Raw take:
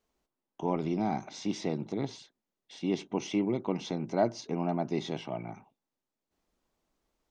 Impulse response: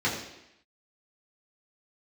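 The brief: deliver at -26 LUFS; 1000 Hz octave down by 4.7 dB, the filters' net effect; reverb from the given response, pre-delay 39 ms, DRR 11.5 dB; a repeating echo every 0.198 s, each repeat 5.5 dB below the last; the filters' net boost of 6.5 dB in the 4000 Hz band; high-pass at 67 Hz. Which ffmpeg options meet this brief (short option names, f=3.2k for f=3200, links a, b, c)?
-filter_complex "[0:a]highpass=67,equalizer=f=1k:t=o:g=-7.5,equalizer=f=4k:t=o:g=8.5,aecho=1:1:198|396|594|792|990|1188|1386:0.531|0.281|0.149|0.079|0.0419|0.0222|0.0118,asplit=2[a][b];[1:a]atrim=start_sample=2205,adelay=39[c];[b][c]afir=irnorm=-1:irlink=0,volume=-23.5dB[d];[a][d]amix=inputs=2:normalize=0,volume=6dB"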